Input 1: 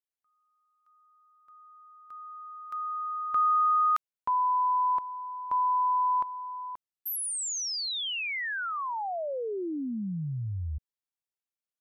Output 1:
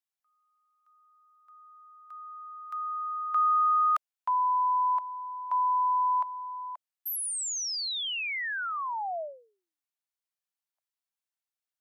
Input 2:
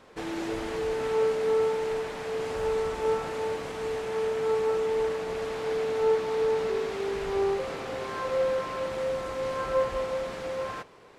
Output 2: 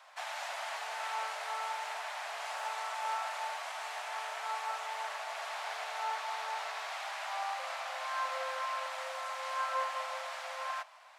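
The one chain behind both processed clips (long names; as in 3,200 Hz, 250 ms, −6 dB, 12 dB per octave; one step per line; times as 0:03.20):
Butterworth high-pass 620 Hz 72 dB per octave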